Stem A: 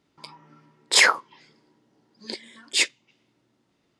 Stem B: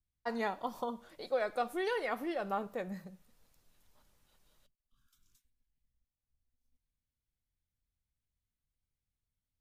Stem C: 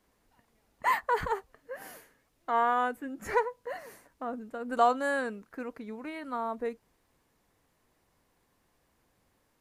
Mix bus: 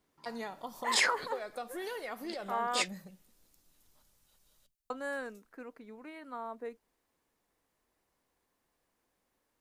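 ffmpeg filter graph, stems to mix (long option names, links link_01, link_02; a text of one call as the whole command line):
ffmpeg -i stem1.wav -i stem2.wav -i stem3.wav -filter_complex "[0:a]volume=-11.5dB[link_01];[1:a]bass=frequency=250:gain=0,treble=frequency=4000:gain=8,acompressor=threshold=-35dB:ratio=4,volume=-2dB[link_02];[2:a]highpass=210,volume=-7.5dB,asplit=3[link_03][link_04][link_05];[link_03]atrim=end=2.82,asetpts=PTS-STARTPTS,afade=type=out:start_time=2.816:duration=0.004:curve=hsin[link_06];[link_04]atrim=start=2.82:end=4.9,asetpts=PTS-STARTPTS,volume=0[link_07];[link_05]atrim=start=4.9,asetpts=PTS-STARTPTS,afade=type=in:duration=0.004:curve=hsin[link_08];[link_06][link_07][link_08]concat=n=3:v=0:a=1[link_09];[link_01][link_02][link_09]amix=inputs=3:normalize=0" out.wav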